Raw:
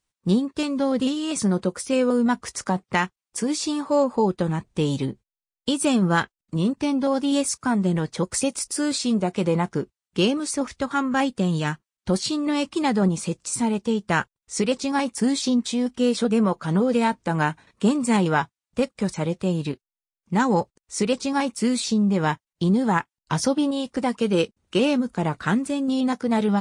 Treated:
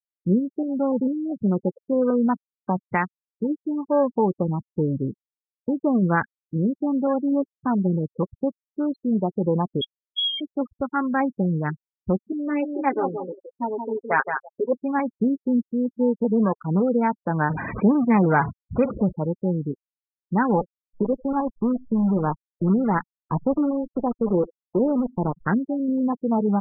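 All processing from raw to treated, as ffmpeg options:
-filter_complex "[0:a]asettb=1/sr,asplit=3[s0][s1][s2];[s0]atrim=end=9.814[s3];[s1]atrim=start=9.81:end=10.41,asetpts=PTS-STARTPTS,afade=t=in:d=0.004:c=qsin,afade=t=out:st=0.596:d=0.004:c=qsin,lowshelf=f=290:t=q:w=3:g=12.5,acompressor=threshold=0.2:ratio=4:attack=3.2:release=140:knee=1:detection=peak,lowpass=f=3000:t=q:w=0.5098,lowpass=f=3000:t=q:w=0.6013,lowpass=f=3000:t=q:w=0.9,lowpass=f=3000:t=q:w=2.563,afreqshift=-3500[s4];[s2]atrim=start=10.406[s5];[s3][s4]acrossfade=d=0.004:c1=hsin:c2=qsin[s6];[s6][s5]acrossfade=d=0.004:c1=qsin:c2=hsin,asettb=1/sr,asplit=3[s7][s8][s9];[s7]atrim=end=12.324[s10];[s8]atrim=start=12.32:end=14.73,asetpts=PTS-STARTPTS,afade=t=in:d=0.004:c=qsin,afade=t=out:st=2.406:d=0.004:c=qsin,highpass=390,aecho=1:1:7.4:0.8,atrim=end_sample=106281,aecho=1:1:170|340|510|680:0.501|0.155|0.0482|0.0149,atrim=end_sample=106281[s11];[s9]atrim=start=14.726[s12];[s10][s11]acrossfade=d=0.004:c1=hsin:c2=qsin[s13];[s13][s12]acrossfade=d=0.004:c1=qsin:c2=hsin,asettb=1/sr,asplit=3[s14][s15][s16];[s14]atrim=end=17.504[s17];[s15]atrim=start=17.5:end=19.16,asetpts=PTS-STARTPTS,afade=t=in:d=0.004:c=qsin,afade=t=out:st=1.656:d=0.004:c=qsin,aeval=exprs='val(0)+0.5*0.0891*sgn(val(0))':c=same,highpass=63[s18];[s16]atrim=start=19.156[s19];[s17][s18]acrossfade=d=0.004:c1=hsin:c2=qsin[s20];[s20][s19]acrossfade=d=0.004:c1=qsin:c2=hsin,asettb=1/sr,asplit=3[s21][s22][s23];[s21]atrim=end=20.464[s24];[s22]atrim=start=20.46:end=25.48,asetpts=PTS-STARTPTS,afade=t=in:d=0.004:c=qsin,afade=t=out:st=5.016:d=0.004:c=qsin,highshelf=f=2700:g=-9.5,acrusher=bits=5:dc=4:mix=0:aa=0.000001,aecho=1:1:91|182:0.0794|0.0222,atrim=end_sample=221382[s25];[s23]atrim=start=25.476[s26];[s24][s25]acrossfade=d=0.004:c1=hsin:c2=qsin[s27];[s27][s26]acrossfade=d=0.004:c1=qsin:c2=hsin,afwtdn=0.0355,acrossover=split=2800[s28][s29];[s29]acompressor=threshold=0.00158:ratio=4:attack=1:release=60[s30];[s28][s30]amix=inputs=2:normalize=0,afftfilt=real='re*gte(hypot(re,im),0.0562)':imag='im*gte(hypot(re,im),0.0562)':win_size=1024:overlap=0.75"

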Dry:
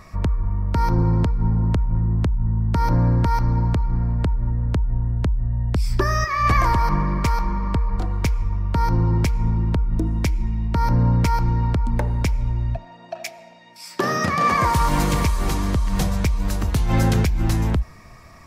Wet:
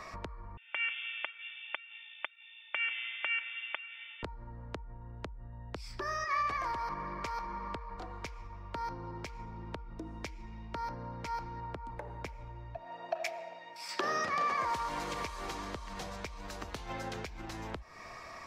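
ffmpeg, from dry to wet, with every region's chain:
-filter_complex "[0:a]asettb=1/sr,asplit=3[s0][s1][s2];[s0]atrim=end=0.574[s3];[s1]atrim=start=0.57:end=4.23,asetpts=PTS-STARTPTS,afade=t=in:d=0.004:c=qsin,afade=t=out:st=3.656:d=0.004:c=qsin,highpass=1500,lowpass=f=3100:t=q:w=0.5098,lowpass=f=3100:t=q:w=0.6013,lowpass=f=3100:t=q:w=0.9,lowpass=f=3100:t=q:w=2.563,afreqshift=-3700,aecho=1:1:3.4:0.63,atrim=end_sample=161406[s4];[s2]atrim=start=4.226[s5];[s3][s4]acrossfade=d=0.004:c1=hsin:c2=qsin[s6];[s6][s5]acrossfade=d=0.004:c1=qsin:c2=hsin,asettb=1/sr,asplit=3[s7][s8][s9];[s7]atrim=end=11.604[s10];[s8]atrim=start=11.6:end=13.89,asetpts=PTS-STARTPTS,afade=t=in:d=0.004:c=qsin,afade=t=out:st=2.286:d=0.004:c=qsin,highpass=41,equalizer=f=5100:t=o:w=2.3:g=-7.5,bandreject=f=230:w=7.5[s11];[s9]atrim=start=13.886[s12];[s10][s11]acrossfade=d=0.004:c1=hsin:c2=qsin[s13];[s13][s12]acrossfade=d=0.004:c1=qsin:c2=hsin,alimiter=limit=0.188:level=0:latency=1:release=251,acompressor=threshold=0.0282:ratio=6,acrossover=split=350 6700:gain=0.158 1 0.224[s14][s15][s16];[s14][s15][s16]amix=inputs=3:normalize=0,volume=1.26"

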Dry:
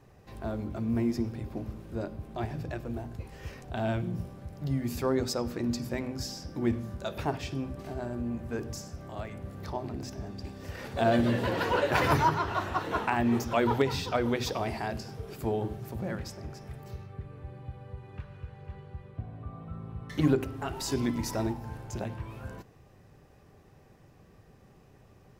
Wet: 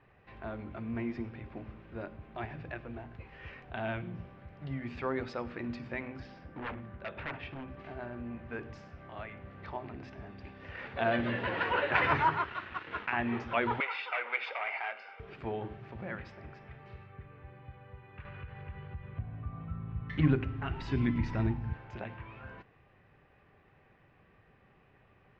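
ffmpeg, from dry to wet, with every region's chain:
-filter_complex "[0:a]asettb=1/sr,asplit=3[s0][s1][s2];[s0]atrim=end=6.204[s3];[s1]atrim=start=6.2:end=7.68,asetpts=PTS-STARTPTS,afade=t=in:d=0.004:c=qsin,afade=t=out:st=1.476:d=0.004:c=qsin,adynamicsmooth=sensitivity=3.5:basefreq=3300,aeval=exprs='0.0335*(abs(mod(val(0)/0.0335+3,4)-2)-1)':c=same[s4];[s2]atrim=start=7.676[s5];[s3][s4]acrossfade=d=0.004:c1=hsin:c2=qsin[s6];[s6][s5]acrossfade=d=0.004:c1=qsin:c2=hsin,asettb=1/sr,asplit=3[s7][s8][s9];[s7]atrim=end=12.444[s10];[s8]atrim=start=12.44:end=13.13,asetpts=PTS-STARTPTS,afade=t=in:d=0.004:c=qsin,afade=t=out:st=0.686:d=0.004:c=qsin,equalizer=f=770:w=1.5:g=-10.5,bandreject=f=50:t=h:w=6,bandreject=f=100:t=h:w=6,bandreject=f=150:t=h:w=6,bandreject=f=200:t=h:w=6,bandreject=f=250:t=h:w=6,bandreject=f=300:t=h:w=6,bandreject=f=350:t=h:w=6,bandreject=f=400:t=h:w=6,aeval=exprs='sgn(val(0))*max(abs(val(0))-0.0075,0)':c=same[s11];[s9]atrim=start=13.126[s12];[s10][s11]acrossfade=d=0.004:c1=hsin:c2=qsin[s13];[s13][s12]acrossfade=d=0.004:c1=qsin:c2=hsin,asettb=1/sr,asplit=3[s14][s15][s16];[s14]atrim=end=13.804[s17];[s15]atrim=start=13.8:end=15.2,asetpts=PTS-STARTPTS,afade=t=in:d=0.004:c=qsin,afade=t=out:st=1.396:d=0.004:c=qsin,aecho=1:1:1.4:0.58,atrim=end_sample=61740,asoftclip=type=hard:threshold=0.0422,highpass=f=470:w=0.5412,highpass=f=470:w=1.3066,equalizer=f=660:t=q:w=4:g=-5,equalizer=f=1200:t=q:w=4:g=5,equalizer=f=2300:t=q:w=4:g=8,equalizer=f=4000:t=q:w=4:g=-5,equalizer=f=5900:t=q:w=4:g=-6,lowpass=f=6100:w=0.5412,lowpass=f=6100:w=1.3066[s18];[s16]atrim=start=15.196[s19];[s17][s18]acrossfade=d=0.004:c1=hsin:c2=qsin[s20];[s20][s19]acrossfade=d=0.004:c1=qsin:c2=hsin,asettb=1/sr,asplit=3[s21][s22][s23];[s21]atrim=end=18.254[s24];[s22]atrim=start=18.25:end=21.74,asetpts=PTS-STARTPTS,afade=t=in:d=0.004:c=qsin,afade=t=out:st=3.486:d=0.004:c=qsin,asubboost=boost=6.5:cutoff=240,acompressor=mode=upward:threshold=0.0355:ratio=2.5:attack=3.2:release=140:knee=2.83:detection=peak[s25];[s23]atrim=start=21.736[s26];[s24][s25]acrossfade=d=0.004:c1=hsin:c2=qsin[s27];[s27][s26]acrossfade=d=0.004:c1=qsin:c2=hsin,lowpass=f=2500:w=0.5412,lowpass=f=2500:w=1.3066,tiltshelf=f=1300:g=-8.5"

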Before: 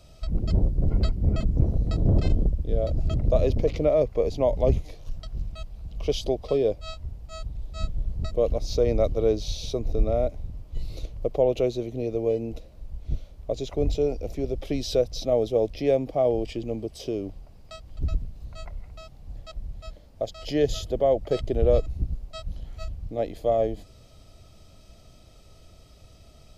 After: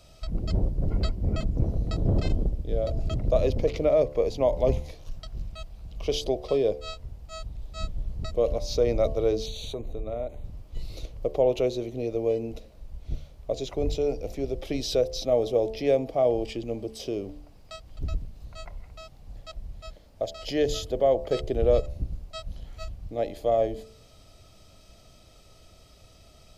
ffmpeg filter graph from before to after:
-filter_complex "[0:a]asettb=1/sr,asplit=3[s0][s1][s2];[s0]atrim=end=9.464[s3];[s1]atrim=start=9.46:end=10.44,asetpts=PTS-STARTPTS,afade=t=in:d=0.004:c=qsin,afade=t=out:st=0.976:d=0.004:c=qsin,asuperstop=centerf=5200:order=4:qfactor=2.4,acompressor=threshold=0.0398:ratio=3:attack=3.2:release=140:knee=1:detection=peak[s4];[s2]atrim=start=10.436[s5];[s3][s4]acrossfade=d=0.004:c1=hsin:c2=qsin[s6];[s6][s5]acrossfade=d=0.004:c1=qsin:c2=hsin,lowshelf=f=370:g=-5,bandreject=f=73.66:t=h:w=4,bandreject=f=147.32:t=h:w=4,bandreject=f=220.98:t=h:w=4,bandreject=f=294.64:t=h:w=4,bandreject=f=368.3:t=h:w=4,bandreject=f=441.96:t=h:w=4,bandreject=f=515.62:t=h:w=4,bandreject=f=589.28:t=h:w=4,bandreject=f=662.94:t=h:w=4,bandreject=f=736.6:t=h:w=4,bandreject=f=810.26:t=h:w=4,bandreject=f=883.92:t=h:w=4,bandreject=f=957.58:t=h:w=4,bandreject=f=1031.24:t=h:w=4,bandreject=f=1104.9:t=h:w=4,volume=1.19"

